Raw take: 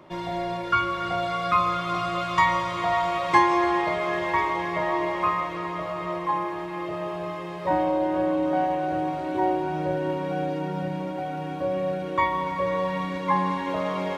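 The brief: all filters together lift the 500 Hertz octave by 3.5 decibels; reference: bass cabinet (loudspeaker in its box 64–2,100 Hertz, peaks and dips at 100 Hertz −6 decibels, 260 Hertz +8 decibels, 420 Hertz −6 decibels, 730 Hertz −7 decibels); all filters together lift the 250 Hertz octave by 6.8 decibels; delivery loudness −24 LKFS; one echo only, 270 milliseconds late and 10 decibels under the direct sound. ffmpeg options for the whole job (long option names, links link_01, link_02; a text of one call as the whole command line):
ffmpeg -i in.wav -af "highpass=frequency=64:width=0.5412,highpass=frequency=64:width=1.3066,equalizer=frequency=100:width_type=q:width=4:gain=-6,equalizer=frequency=260:width_type=q:width=4:gain=8,equalizer=frequency=420:width_type=q:width=4:gain=-6,equalizer=frequency=730:width_type=q:width=4:gain=-7,lowpass=frequency=2100:width=0.5412,lowpass=frequency=2100:width=1.3066,equalizer=frequency=250:width_type=o:gain=5.5,equalizer=frequency=500:width_type=o:gain=6,aecho=1:1:270:0.316,volume=-1.5dB" out.wav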